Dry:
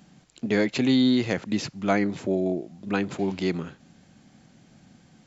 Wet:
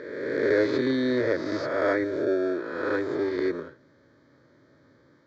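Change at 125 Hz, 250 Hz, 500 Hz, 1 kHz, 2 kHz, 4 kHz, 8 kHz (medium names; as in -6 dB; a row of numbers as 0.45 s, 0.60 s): -8.5 dB, -4.0 dB, +4.0 dB, -1.5 dB, +1.5 dB, -8.0 dB, no reading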